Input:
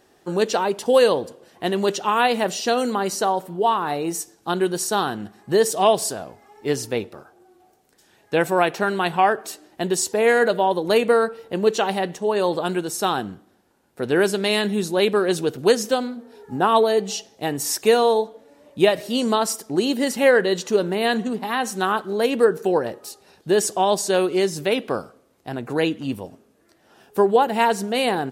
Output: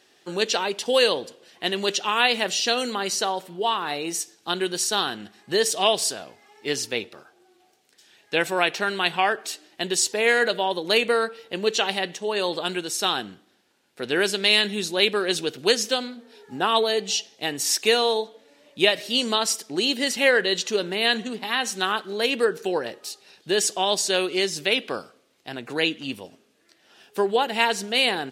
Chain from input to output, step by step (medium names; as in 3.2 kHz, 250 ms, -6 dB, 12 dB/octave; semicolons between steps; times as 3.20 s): frequency weighting D; trim -5 dB